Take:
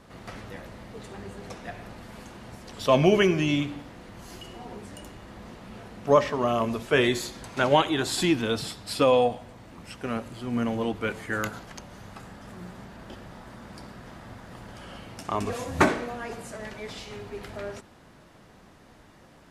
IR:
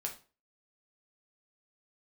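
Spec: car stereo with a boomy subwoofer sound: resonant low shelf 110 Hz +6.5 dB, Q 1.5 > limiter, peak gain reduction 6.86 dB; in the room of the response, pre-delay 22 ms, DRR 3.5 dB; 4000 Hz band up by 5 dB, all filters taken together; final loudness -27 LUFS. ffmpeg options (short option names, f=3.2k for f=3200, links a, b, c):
-filter_complex "[0:a]equalizer=f=4k:t=o:g=6.5,asplit=2[a][b];[1:a]atrim=start_sample=2205,adelay=22[c];[b][c]afir=irnorm=-1:irlink=0,volume=-3.5dB[d];[a][d]amix=inputs=2:normalize=0,lowshelf=f=110:t=q:w=1.5:g=6.5,volume=-1dB,alimiter=limit=-12.5dB:level=0:latency=1"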